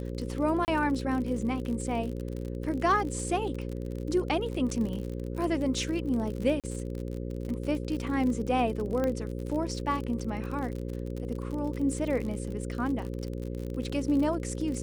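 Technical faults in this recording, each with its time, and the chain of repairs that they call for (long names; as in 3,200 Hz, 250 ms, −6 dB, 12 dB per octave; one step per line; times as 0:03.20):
mains buzz 60 Hz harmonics 9 −35 dBFS
surface crackle 49 per second −34 dBFS
0:00.65–0:00.68: drop-out 29 ms
0:06.60–0:06.64: drop-out 37 ms
0:09.04: click −18 dBFS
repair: click removal
hum removal 60 Hz, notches 9
repair the gap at 0:00.65, 29 ms
repair the gap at 0:06.60, 37 ms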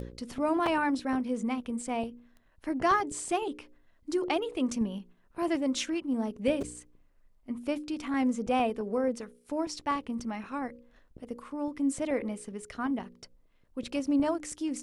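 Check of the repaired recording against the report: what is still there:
none of them is left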